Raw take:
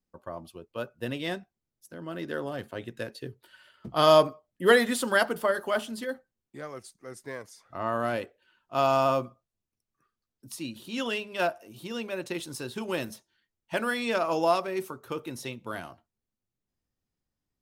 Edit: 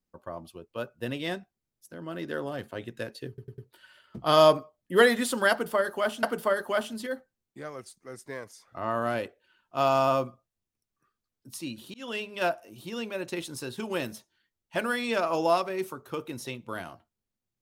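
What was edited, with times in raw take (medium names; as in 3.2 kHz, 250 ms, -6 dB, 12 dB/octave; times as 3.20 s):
3.28 s: stutter 0.10 s, 4 plays
5.21–5.93 s: loop, 2 plays
10.92–11.33 s: fade in equal-power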